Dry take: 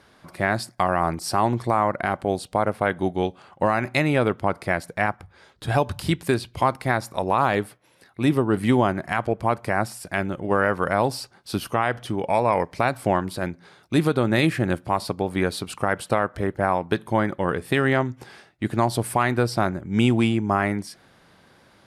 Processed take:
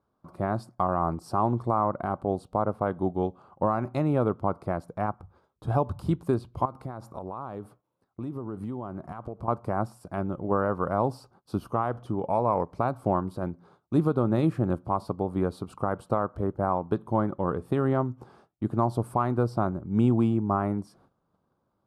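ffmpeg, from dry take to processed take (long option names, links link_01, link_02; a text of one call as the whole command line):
ffmpeg -i in.wav -filter_complex "[0:a]asettb=1/sr,asplit=3[link_01][link_02][link_03];[link_01]atrim=end=6.654[link_04];[link_02]atrim=start=6.65:end=9.48,asetpts=PTS-STARTPTS,afade=type=in:duration=0.004:curve=qsin,afade=type=out:start_time=2.826:duration=0.004:curve=qsin,acompressor=threshold=-28dB:ratio=6:attack=3.2:release=140:knee=1:detection=peak[link_05];[link_03]atrim=start=9.476[link_06];[link_04][link_05]acrossfade=duration=0.004:curve1=hsin:curve2=qsin[link_07];[link_07][link_06]acrossfade=duration=0.004:curve1=qsin:curve2=hsin,tiltshelf=frequency=740:gain=5,agate=range=-15dB:threshold=-50dB:ratio=16:detection=peak,highshelf=frequency=1500:width_type=q:width=3:gain=-7,volume=-7dB" out.wav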